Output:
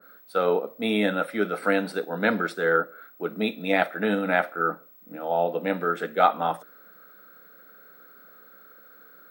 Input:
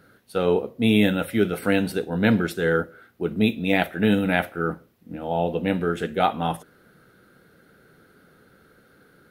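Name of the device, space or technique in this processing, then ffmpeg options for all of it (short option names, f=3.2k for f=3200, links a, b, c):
old television with a line whistle: -filter_complex "[0:a]asettb=1/sr,asplit=3[a][b][c];[a]atrim=end=2.634[d];[b]atrim=start=2.63:end=3.33,asetpts=PTS-STARTPTS,afade=t=in:d=0.004:c=qsin,afade=t=out:st=0.696:d=0.004:c=qsin,lowpass=8.7k[e];[c]atrim=start=3.326[f];[d][e]acrossfade=d=0.004:c1=hsin:c2=qsin[g];[g][f]acrossfade=d=0.004:c1=qsin:c2=hsin,highpass=f=220:w=0.5412,highpass=f=220:w=1.3066,equalizer=f=240:t=q:w=4:g=-7,equalizer=f=370:t=q:w=4:g=-7,equalizer=f=610:t=q:w=4:g=3,equalizer=f=1.3k:t=q:w=4:g=7,equalizer=f=2.9k:t=q:w=4:g=-8,equalizer=f=6.7k:t=q:w=4:g=-7,lowpass=f=8.8k:w=0.5412,lowpass=f=8.8k:w=1.3066,aeval=exprs='val(0)+0.00316*sin(2*PI*15734*n/s)':c=same,adynamicequalizer=threshold=0.0224:dfrequency=1800:dqfactor=0.7:tfrequency=1800:tqfactor=0.7:attack=5:release=100:ratio=0.375:range=2:mode=cutabove:tftype=highshelf"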